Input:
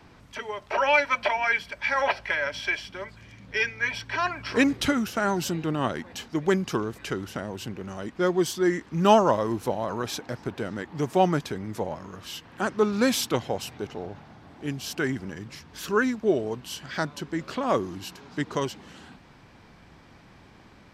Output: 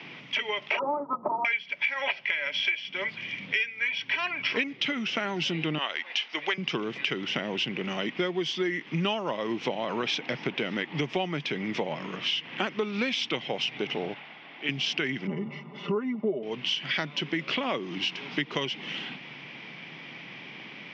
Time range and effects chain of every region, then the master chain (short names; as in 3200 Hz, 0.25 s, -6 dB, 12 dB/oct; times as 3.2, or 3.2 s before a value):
0.79–1.45 half-waves squared off + rippled Chebyshev low-pass 1300 Hz, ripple 6 dB
5.78–6.58 HPF 750 Hz + notch 7500 Hz, Q 5.1
14.14–14.69 HPF 890 Hz 6 dB/oct + air absorption 150 m
15.27–16.43 polynomial smoothing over 65 samples + comb 5 ms, depth 85%
whole clip: Chebyshev band-pass 140–5600 Hz, order 4; band shelf 2600 Hz +13.5 dB 1 oct; compressor 10:1, threshold -31 dBFS; gain +5.5 dB